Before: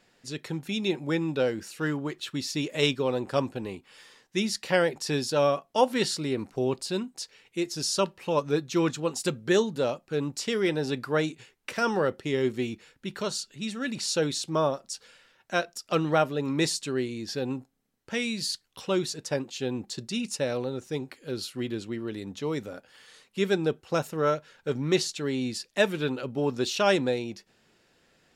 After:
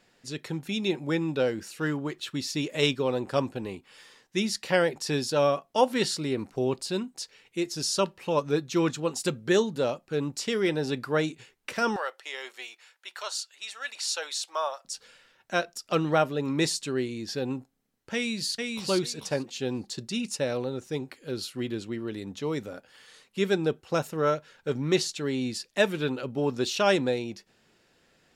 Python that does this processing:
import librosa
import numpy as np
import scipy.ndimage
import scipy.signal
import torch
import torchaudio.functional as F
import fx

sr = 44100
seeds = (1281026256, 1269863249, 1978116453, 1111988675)

y = fx.highpass(x, sr, hz=700.0, slope=24, at=(11.96, 14.85))
y = fx.echo_throw(y, sr, start_s=18.14, length_s=0.72, ms=440, feedback_pct=15, wet_db=-3.5)